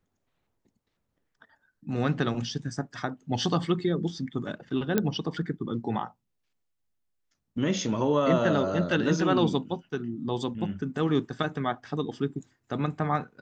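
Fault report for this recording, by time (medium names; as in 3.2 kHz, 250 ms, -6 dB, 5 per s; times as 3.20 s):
4.98 s: pop -10 dBFS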